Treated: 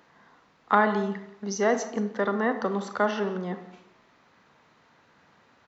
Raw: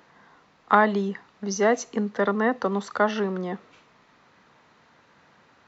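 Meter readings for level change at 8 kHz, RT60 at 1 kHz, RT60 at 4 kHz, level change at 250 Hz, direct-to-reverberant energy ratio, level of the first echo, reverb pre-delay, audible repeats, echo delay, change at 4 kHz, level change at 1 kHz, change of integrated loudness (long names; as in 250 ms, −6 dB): can't be measured, 0.70 s, 0.45 s, −2.5 dB, 8.5 dB, −18.5 dB, 30 ms, 1, 174 ms, −2.5 dB, −2.5 dB, −2.5 dB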